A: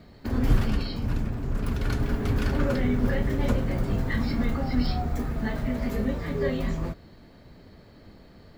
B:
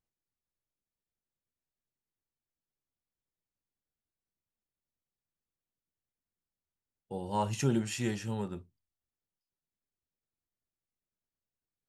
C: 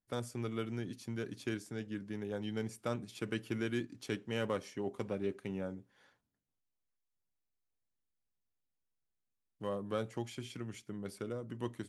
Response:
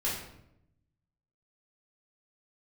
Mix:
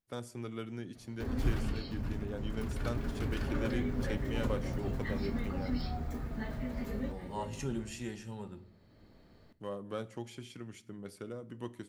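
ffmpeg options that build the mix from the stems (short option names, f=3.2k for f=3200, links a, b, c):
-filter_complex "[0:a]adelay=950,volume=-10.5dB,asplit=2[a][b];[b]volume=-20dB[c];[1:a]volume=-9dB,asplit=3[d][e][f];[e]volume=-17dB[g];[2:a]volume=-3dB,asplit=2[h][i];[i]volume=-23dB[j];[f]apad=whole_len=420074[k];[a][k]sidechaincompress=threshold=-50dB:ratio=8:attack=16:release=794[l];[3:a]atrim=start_sample=2205[m];[c][g][j]amix=inputs=3:normalize=0[n];[n][m]afir=irnorm=-1:irlink=0[o];[l][d][h][o]amix=inputs=4:normalize=0"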